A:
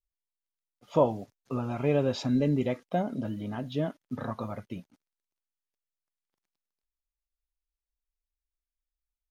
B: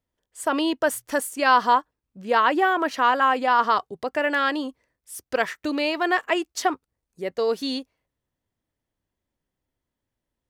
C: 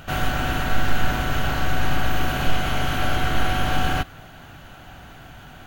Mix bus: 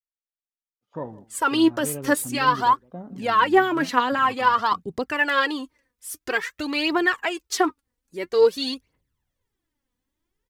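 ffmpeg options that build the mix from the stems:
-filter_complex "[0:a]afwtdn=0.01,volume=-7dB,asplit=2[a][b];[b]volume=-20.5dB[c];[1:a]alimiter=limit=-12.5dB:level=0:latency=1:release=149,aphaser=in_gain=1:out_gain=1:delay=4.2:decay=0.66:speed=0.5:type=triangular,adelay=950,volume=1dB[d];[c]aecho=0:1:162:1[e];[a][d][e]amix=inputs=3:normalize=0,equalizer=f=650:t=o:w=0.48:g=-8"

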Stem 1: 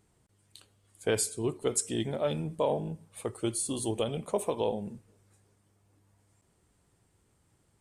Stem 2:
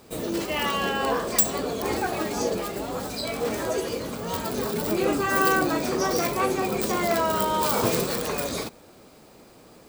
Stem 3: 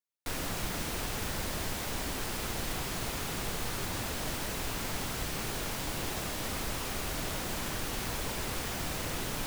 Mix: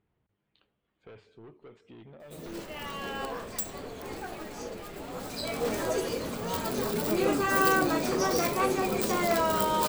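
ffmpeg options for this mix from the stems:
-filter_complex "[0:a]asoftclip=type=tanh:threshold=-32dB,volume=-7.5dB,asplit=2[a][b];[1:a]adelay=2200,volume=-2.5dB[c];[2:a]alimiter=level_in=7.5dB:limit=-24dB:level=0:latency=1,volume=-7.5dB,adelay=2200,volume=3dB[d];[b]apad=whole_len=532920[e];[c][e]sidechaincompress=threshold=-53dB:ratio=8:attack=37:release=971[f];[a][d]amix=inputs=2:normalize=0,lowpass=f=3.2k:w=0.5412,lowpass=f=3.2k:w=1.3066,acompressor=threshold=-52dB:ratio=2,volume=0dB[g];[f][g]amix=inputs=2:normalize=0,bandreject=f=50:t=h:w=6,bandreject=f=100:t=h:w=6"

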